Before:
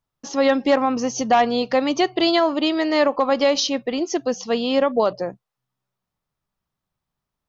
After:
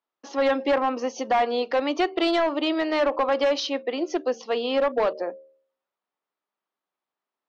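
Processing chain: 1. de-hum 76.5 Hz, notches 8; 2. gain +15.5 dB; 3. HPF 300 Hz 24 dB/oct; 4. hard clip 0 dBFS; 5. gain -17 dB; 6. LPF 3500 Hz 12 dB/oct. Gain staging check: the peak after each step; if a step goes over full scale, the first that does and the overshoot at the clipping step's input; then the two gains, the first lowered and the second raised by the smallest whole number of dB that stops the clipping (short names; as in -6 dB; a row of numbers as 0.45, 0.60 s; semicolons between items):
-7.0, +8.5, +9.5, 0.0, -17.0, -16.5 dBFS; step 2, 9.5 dB; step 2 +5.5 dB, step 5 -7 dB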